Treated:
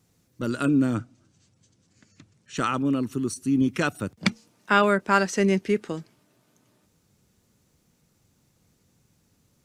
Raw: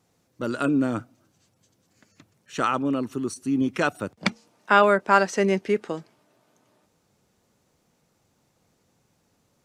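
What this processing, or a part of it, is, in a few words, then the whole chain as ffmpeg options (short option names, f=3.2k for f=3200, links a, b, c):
smiley-face EQ: -filter_complex "[0:a]asettb=1/sr,asplit=3[a][b][c];[a]atrim=end=0.964[d];[b]atrim=start=0.96:end=2.57,asetpts=PTS-STARTPTS,afade=t=in:d=0.004:c=qsin,afade=t=out:st=1.606:d=0.004:c=qsin,lowpass=f=8.5k:w=0.5412,lowpass=f=8.5k:w=1.3066[e];[c]atrim=start=2.566[f];[d][e]acrossfade=d=0.004:c1=hsin:c2=qsin[g];[g][f]acrossfade=d=0.004:c1=qsin:c2=hsin,lowshelf=f=200:g=7,equalizer=f=720:t=o:w=1.5:g=-6,highshelf=f=7.4k:g=5.5"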